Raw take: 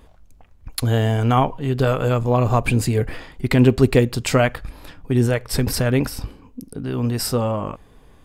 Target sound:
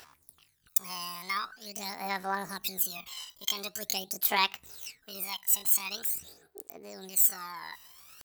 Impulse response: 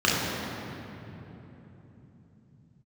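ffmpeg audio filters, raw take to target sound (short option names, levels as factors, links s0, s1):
-af "aphaser=in_gain=1:out_gain=1:delay=1.6:decay=0.72:speed=0.45:type=sinusoidal,areverse,acompressor=mode=upward:threshold=0.158:ratio=2.5,areverse,aderivative,asetrate=70004,aresample=44100,atempo=0.629961"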